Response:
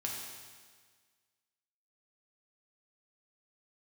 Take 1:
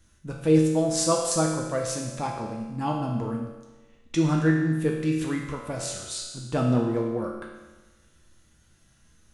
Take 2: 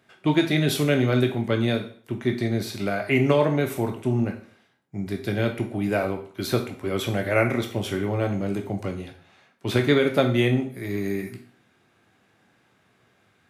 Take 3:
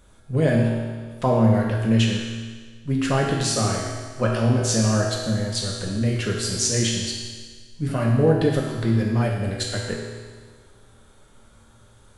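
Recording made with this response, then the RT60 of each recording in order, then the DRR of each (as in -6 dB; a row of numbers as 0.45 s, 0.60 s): 3; 1.2 s, 0.50 s, 1.6 s; -1.0 dB, 3.5 dB, -2.5 dB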